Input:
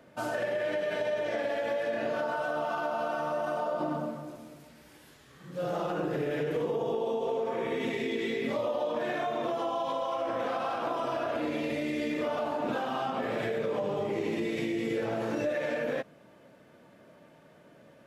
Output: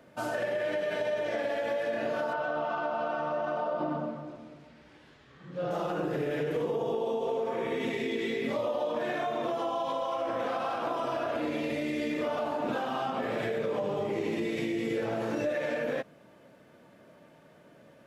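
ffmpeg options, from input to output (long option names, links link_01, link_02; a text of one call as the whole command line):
ffmpeg -i in.wav -filter_complex "[0:a]asettb=1/sr,asplit=3[link_01][link_02][link_03];[link_01]atrim=end=2.334[link_04];[link_02]atrim=start=2.33:end=5.71,asetpts=PTS-STARTPTS,afade=type=in:duration=0.004:curve=qsin,afade=type=out:start_time=3.376:duration=0.004:curve=qsin,lowpass=3800[link_05];[link_03]atrim=start=5.706[link_06];[link_04][link_05]acrossfade=duration=0.004:curve1=hsin:curve2=qsin[link_07];[link_07][link_06]acrossfade=duration=0.004:curve1=qsin:curve2=hsin" out.wav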